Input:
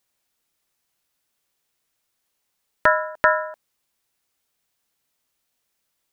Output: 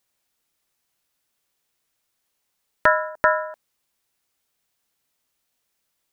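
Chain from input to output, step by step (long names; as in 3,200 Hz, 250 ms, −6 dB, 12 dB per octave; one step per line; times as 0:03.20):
0:03.09–0:03.50: parametric band 3,100 Hz −8 dB 1 octave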